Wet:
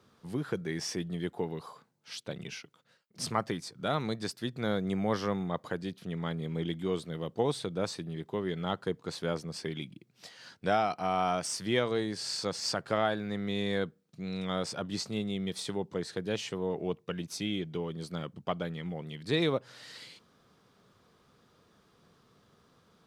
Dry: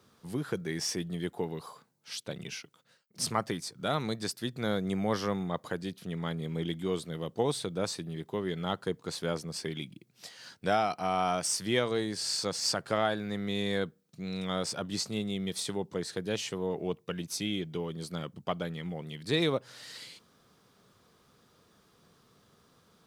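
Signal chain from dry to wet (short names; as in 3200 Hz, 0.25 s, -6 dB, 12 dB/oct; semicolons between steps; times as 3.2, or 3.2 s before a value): high shelf 6700 Hz -9.5 dB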